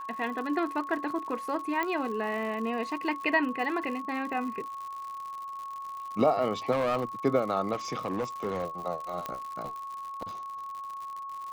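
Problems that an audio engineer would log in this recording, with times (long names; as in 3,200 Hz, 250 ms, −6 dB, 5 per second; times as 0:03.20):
surface crackle 120 per second −37 dBFS
whistle 1,100 Hz −36 dBFS
0:01.83: click −17 dBFS
0:06.71–0:07.04: clipping −23.5 dBFS
0:07.72–0:08.65: clipping −26 dBFS
0:09.26: click −19 dBFS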